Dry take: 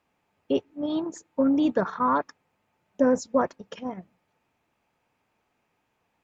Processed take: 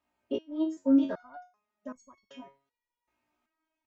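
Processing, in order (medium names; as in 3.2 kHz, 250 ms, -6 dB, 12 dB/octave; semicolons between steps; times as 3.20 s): comb 3.2 ms, depth 84%; time stretch by phase-locked vocoder 0.62×; resonator arpeggio 2.6 Hz 60–1100 Hz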